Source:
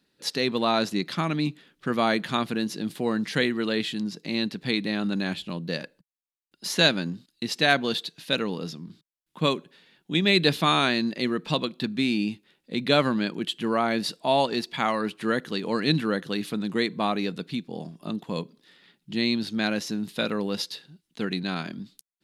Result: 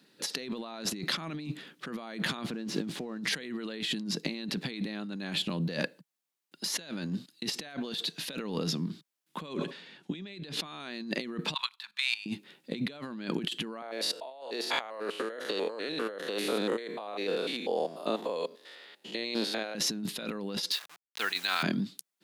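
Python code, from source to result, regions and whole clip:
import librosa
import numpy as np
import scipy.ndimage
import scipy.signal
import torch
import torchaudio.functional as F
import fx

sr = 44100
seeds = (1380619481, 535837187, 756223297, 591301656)

y = fx.chain(x, sr, fx.crossing_spikes(level_db=-29.0),
    fx.spacing_loss(db_at_10k=23), at=(2.46, 3.19))
y = fx.chain(y, sr, fx.lowpass(hz=8000.0, slope=12),
    fx.sustainer(db_per_s=140.0), at=(9.47, 10.8))
y = fx.chain(y, sr, fx.ellip_highpass(hz=910.0, order=4, stop_db=40),
    fx.level_steps(step_db=17), at=(11.54, 12.26))
y = fx.chain(y, sr, fx.spec_steps(hold_ms=100),
    fx.highpass_res(hz=520.0, q=2.2), at=(13.82, 19.75))
y = fx.chain(y, sr, fx.delta_hold(step_db=-44.5),
    fx.highpass(hz=1100.0, slope=12), at=(20.71, 21.63))
y = scipy.signal.sosfilt(scipy.signal.butter(4, 140.0, 'highpass', fs=sr, output='sos'), y)
y = fx.over_compress(y, sr, threshold_db=-36.0, ratio=-1.0)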